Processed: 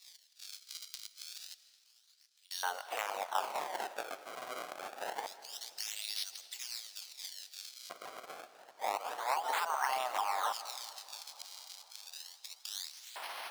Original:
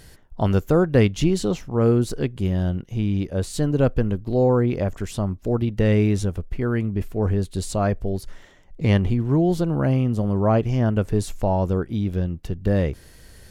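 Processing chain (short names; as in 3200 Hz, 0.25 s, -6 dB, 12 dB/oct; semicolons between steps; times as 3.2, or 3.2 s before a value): spectral gate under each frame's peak -25 dB weak; bell 2400 Hz -8 dB 0.31 oct; compressor 4:1, threshold -45 dBFS, peak gain reduction 13 dB; 1.54–2.51 flipped gate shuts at -49 dBFS, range -25 dB; decimation with a swept rate 28×, swing 160% 0.28 Hz; LFO high-pass square 0.19 Hz 800–4500 Hz; reverb RT60 1.4 s, pre-delay 0.115 s, DRR 15.5 dB; warbling echo 0.229 s, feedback 75%, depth 133 cents, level -22.5 dB; gain +11 dB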